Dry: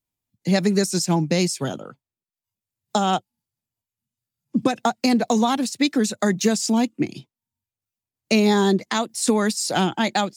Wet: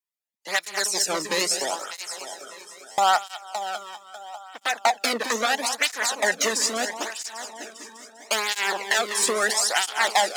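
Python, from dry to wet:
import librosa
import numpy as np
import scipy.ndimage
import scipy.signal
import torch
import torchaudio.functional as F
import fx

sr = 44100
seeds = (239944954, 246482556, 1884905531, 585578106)

p1 = np.minimum(x, 2.0 * 10.0 ** (-17.5 / 20.0) - x)
p2 = fx.rider(p1, sr, range_db=10, speed_s=0.5)
p3 = p1 + (p2 * librosa.db_to_amplitude(0.0))
p4 = fx.peak_eq(p3, sr, hz=1900.0, db=6.0, octaves=0.23)
p5 = p4 + fx.echo_heads(p4, sr, ms=199, heads='first and third', feedback_pct=55, wet_db=-11.5, dry=0)
p6 = fx.noise_reduce_blind(p5, sr, reduce_db=9)
p7 = scipy.signal.sosfilt(scipy.signal.butter(2, 710.0, 'highpass', fs=sr, output='sos'), p6)
p8 = fx.buffer_glitch(p7, sr, at_s=(2.91,), block=512, repeats=5)
y = fx.flanger_cancel(p8, sr, hz=0.76, depth_ms=1.5)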